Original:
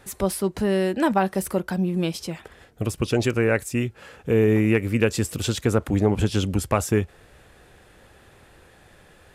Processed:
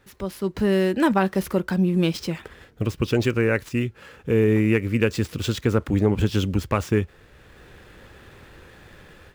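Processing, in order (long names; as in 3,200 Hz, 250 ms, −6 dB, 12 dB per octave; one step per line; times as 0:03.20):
running median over 5 samples
parametric band 710 Hz −6.5 dB 0.58 octaves
automatic gain control gain up to 12.5 dB
level −6.5 dB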